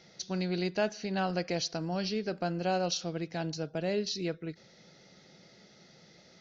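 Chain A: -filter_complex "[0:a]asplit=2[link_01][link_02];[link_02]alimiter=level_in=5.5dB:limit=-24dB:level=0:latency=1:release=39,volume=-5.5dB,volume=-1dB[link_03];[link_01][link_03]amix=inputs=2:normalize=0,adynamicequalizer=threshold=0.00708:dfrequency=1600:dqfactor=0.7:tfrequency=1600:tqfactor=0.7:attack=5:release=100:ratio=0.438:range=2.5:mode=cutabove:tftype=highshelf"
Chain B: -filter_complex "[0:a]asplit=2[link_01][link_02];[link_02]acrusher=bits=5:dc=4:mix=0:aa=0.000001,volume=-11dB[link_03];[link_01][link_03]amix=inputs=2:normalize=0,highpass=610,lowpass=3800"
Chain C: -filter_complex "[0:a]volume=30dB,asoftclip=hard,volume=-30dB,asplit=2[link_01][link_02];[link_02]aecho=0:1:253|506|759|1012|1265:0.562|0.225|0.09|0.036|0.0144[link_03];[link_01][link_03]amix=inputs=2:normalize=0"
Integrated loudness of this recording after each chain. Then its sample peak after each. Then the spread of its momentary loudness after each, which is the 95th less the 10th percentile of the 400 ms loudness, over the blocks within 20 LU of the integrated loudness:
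−30.5, −37.0, −34.5 LKFS; −17.5, −18.5, −24.5 dBFS; 5, 8, 12 LU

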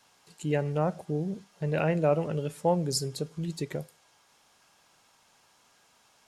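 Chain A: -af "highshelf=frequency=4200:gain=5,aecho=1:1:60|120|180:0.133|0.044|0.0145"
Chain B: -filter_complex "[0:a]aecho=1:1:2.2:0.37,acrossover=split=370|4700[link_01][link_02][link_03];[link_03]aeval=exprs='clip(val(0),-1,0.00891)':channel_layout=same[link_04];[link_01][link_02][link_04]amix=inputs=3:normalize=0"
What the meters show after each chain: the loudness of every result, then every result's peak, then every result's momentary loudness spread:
−29.5, −30.0 LKFS; −12.0, −13.0 dBFS; 10, 11 LU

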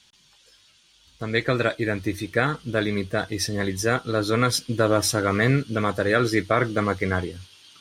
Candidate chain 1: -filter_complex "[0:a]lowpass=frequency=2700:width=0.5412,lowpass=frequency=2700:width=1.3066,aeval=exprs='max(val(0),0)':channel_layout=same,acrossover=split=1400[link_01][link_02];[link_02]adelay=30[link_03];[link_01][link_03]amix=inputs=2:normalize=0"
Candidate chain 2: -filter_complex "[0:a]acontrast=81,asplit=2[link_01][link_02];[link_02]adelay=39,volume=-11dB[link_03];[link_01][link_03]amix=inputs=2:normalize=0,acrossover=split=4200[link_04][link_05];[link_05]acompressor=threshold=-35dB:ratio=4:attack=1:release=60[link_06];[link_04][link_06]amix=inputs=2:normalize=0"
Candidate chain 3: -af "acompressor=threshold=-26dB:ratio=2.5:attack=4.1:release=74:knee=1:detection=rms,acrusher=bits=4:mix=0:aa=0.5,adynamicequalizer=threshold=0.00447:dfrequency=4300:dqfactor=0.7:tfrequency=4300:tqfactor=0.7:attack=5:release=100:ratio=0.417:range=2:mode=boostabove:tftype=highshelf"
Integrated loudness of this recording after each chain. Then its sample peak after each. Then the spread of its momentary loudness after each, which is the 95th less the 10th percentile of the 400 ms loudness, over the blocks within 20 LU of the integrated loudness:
−27.5, −17.5, −29.0 LKFS; −7.5, −1.5, −13.0 dBFS; 7, 5, 6 LU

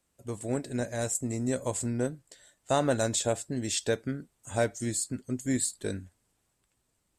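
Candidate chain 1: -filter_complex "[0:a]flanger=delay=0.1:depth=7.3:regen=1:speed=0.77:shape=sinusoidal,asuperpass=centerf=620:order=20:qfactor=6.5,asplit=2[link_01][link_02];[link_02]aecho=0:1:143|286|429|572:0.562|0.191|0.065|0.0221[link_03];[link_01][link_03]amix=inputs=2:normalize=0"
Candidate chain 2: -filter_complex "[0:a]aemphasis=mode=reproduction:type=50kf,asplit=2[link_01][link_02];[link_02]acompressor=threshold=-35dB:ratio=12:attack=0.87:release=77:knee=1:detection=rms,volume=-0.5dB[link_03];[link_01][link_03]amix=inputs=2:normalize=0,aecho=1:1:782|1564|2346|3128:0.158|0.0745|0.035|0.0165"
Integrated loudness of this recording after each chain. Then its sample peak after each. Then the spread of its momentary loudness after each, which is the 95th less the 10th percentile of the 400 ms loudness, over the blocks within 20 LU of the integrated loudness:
−41.0, −30.0 LKFS; −22.5, −12.5 dBFS; 21, 17 LU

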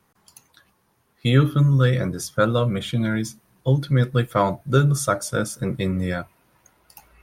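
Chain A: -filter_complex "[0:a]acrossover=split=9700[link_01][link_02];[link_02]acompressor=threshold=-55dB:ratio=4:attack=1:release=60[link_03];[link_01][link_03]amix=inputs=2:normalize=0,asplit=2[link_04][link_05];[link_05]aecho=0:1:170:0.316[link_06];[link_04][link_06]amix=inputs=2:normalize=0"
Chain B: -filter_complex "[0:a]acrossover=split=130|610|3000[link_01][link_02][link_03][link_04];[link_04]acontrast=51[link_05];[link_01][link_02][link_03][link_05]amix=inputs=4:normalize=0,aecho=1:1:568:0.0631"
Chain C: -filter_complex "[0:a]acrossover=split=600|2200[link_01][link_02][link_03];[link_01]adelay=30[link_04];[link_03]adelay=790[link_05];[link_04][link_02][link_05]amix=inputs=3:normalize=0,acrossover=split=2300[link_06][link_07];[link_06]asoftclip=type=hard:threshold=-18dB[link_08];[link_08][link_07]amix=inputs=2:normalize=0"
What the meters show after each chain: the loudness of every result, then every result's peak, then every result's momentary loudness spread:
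−21.0, −21.5, −24.5 LKFS; −3.5, −4.0, −12.5 dBFS; 10, 9, 14 LU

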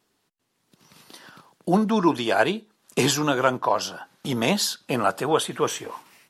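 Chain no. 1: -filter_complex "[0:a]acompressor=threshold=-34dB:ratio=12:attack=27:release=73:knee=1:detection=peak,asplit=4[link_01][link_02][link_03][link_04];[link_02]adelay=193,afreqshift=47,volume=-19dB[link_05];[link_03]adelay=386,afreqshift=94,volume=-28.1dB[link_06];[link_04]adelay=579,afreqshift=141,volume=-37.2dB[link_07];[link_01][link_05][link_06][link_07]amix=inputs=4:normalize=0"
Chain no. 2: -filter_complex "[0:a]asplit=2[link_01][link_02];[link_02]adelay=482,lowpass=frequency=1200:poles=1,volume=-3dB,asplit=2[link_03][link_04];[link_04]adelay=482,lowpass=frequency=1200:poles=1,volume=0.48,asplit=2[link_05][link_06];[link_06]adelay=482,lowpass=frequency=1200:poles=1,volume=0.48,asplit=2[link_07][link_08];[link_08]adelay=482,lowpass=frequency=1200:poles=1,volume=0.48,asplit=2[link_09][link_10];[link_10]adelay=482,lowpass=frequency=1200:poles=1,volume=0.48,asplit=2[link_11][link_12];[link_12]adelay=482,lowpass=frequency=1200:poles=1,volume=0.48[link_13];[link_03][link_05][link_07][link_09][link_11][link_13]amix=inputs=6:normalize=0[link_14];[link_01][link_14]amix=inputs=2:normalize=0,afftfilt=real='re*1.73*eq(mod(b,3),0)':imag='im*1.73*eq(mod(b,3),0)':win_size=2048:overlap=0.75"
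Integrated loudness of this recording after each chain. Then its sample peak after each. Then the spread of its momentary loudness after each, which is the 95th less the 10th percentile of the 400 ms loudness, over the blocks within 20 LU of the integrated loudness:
−34.5, −25.0 LKFS; −15.5, −6.5 dBFS; 12, 5 LU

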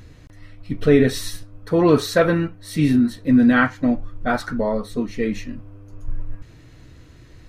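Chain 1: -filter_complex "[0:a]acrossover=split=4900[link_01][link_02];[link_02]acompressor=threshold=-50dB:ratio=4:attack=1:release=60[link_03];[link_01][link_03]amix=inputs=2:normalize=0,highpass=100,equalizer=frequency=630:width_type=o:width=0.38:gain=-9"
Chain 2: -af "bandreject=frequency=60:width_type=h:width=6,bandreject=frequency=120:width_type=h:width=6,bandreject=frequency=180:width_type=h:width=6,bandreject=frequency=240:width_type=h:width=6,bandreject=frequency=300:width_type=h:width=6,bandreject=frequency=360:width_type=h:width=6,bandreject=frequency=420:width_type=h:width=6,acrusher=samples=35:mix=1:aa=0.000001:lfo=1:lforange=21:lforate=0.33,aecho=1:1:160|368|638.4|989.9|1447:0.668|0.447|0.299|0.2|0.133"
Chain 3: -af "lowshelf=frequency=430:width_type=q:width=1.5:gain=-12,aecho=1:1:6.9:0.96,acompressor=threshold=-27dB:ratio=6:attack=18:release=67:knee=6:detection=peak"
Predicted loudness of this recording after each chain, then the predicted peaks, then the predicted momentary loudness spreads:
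−20.0, −18.0, −29.5 LKFS; −3.5, −2.5, −13.0 dBFS; 16, 17, 19 LU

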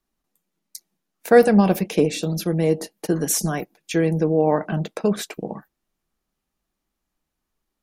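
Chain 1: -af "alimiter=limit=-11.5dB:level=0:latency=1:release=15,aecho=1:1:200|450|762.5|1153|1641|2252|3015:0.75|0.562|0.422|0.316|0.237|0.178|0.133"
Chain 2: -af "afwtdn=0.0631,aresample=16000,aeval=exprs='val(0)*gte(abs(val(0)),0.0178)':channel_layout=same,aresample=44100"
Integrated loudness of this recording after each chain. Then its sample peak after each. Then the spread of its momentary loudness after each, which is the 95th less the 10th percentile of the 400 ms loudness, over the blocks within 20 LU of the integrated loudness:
−20.5, −21.0 LKFS; −5.5, −2.5 dBFS; 17, 13 LU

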